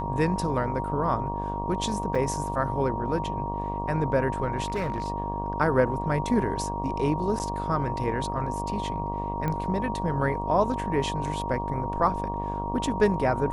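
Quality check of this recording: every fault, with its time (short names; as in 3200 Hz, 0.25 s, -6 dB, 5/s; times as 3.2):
buzz 50 Hz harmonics 23 -33 dBFS
tone 940 Hz -31 dBFS
2.15 gap 4.7 ms
4.64–5.08 clipped -23.5 dBFS
7.39–7.4 gap 9.1 ms
9.48 pop -17 dBFS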